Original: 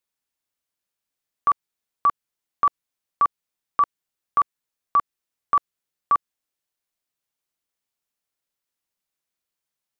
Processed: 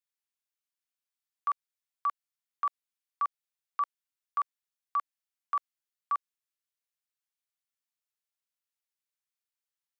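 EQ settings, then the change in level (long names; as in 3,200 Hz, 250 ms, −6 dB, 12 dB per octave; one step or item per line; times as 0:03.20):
high-pass filter 1,100 Hz 12 dB per octave
−8.0 dB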